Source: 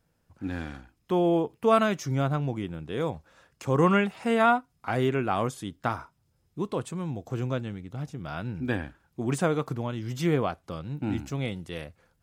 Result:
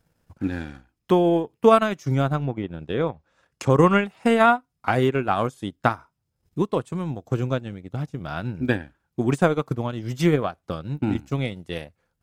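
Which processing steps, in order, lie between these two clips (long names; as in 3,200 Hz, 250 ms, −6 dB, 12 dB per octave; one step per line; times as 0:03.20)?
transient designer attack +6 dB, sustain −11 dB
0:02.41–0:03.70: treble cut that deepens with the level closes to 3,000 Hz, closed at −26.5 dBFS
level +3.5 dB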